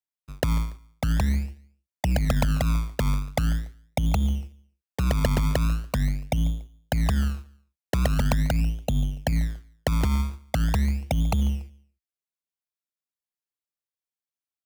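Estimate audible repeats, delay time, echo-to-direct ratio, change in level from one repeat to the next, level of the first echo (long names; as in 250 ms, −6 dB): 2, 143 ms, −22.5 dB, −9.5 dB, −23.0 dB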